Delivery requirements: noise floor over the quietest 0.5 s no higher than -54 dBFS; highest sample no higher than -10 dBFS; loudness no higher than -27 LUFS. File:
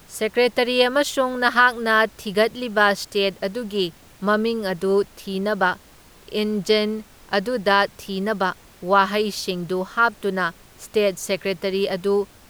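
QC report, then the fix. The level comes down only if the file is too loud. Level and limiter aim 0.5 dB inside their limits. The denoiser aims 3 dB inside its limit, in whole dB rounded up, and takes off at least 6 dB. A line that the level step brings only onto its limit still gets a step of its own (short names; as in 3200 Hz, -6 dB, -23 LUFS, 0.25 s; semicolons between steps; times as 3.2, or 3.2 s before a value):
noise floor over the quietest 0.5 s -49 dBFS: fail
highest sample -4.0 dBFS: fail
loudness -21.5 LUFS: fail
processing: gain -6 dB; limiter -10.5 dBFS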